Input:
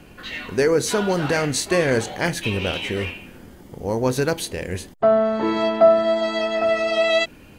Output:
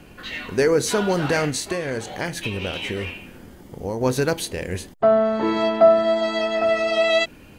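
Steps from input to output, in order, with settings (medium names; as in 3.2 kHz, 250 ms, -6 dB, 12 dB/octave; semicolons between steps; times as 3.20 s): 1.49–4.01 s: compression 6:1, threshold -23 dBFS, peak gain reduction 9 dB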